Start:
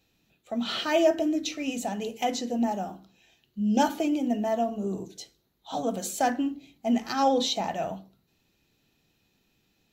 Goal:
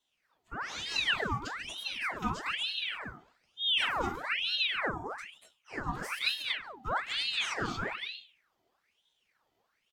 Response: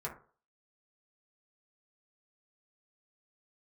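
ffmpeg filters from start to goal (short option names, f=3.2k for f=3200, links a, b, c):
-filter_complex "[0:a]aecho=1:1:139|236:0.188|0.668[a];[1:a]atrim=start_sample=2205,atrim=end_sample=3087[b];[a][b]afir=irnorm=-1:irlink=0,aeval=exprs='val(0)*sin(2*PI*2000*n/s+2000*0.75/1.1*sin(2*PI*1.1*n/s))':c=same,volume=-6.5dB"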